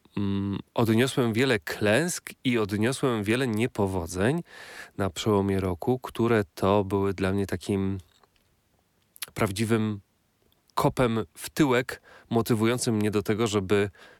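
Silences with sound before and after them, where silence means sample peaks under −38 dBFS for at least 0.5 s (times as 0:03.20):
0:08.00–0:09.16
0:09.98–0:10.77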